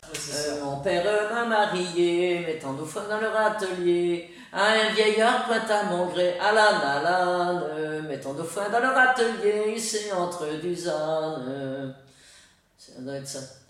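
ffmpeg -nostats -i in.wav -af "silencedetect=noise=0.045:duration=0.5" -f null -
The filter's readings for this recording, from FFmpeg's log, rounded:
silence_start: 11.88
silence_end: 13.07 | silence_duration: 1.19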